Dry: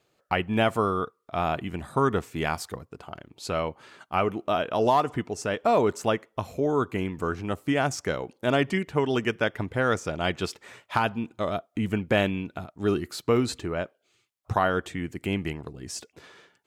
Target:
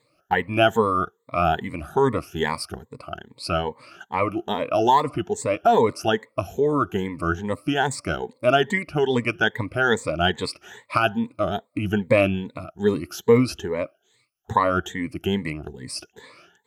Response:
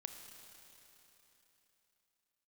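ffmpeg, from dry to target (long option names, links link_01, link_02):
-af "afftfilt=real='re*pow(10,19/40*sin(2*PI*(0.99*log(max(b,1)*sr/1024/100)/log(2)-(2.4)*(pts-256)/sr)))':imag='im*pow(10,19/40*sin(2*PI*(0.99*log(max(b,1)*sr/1024/100)/log(2)-(2.4)*(pts-256)/sr)))':win_size=1024:overlap=0.75"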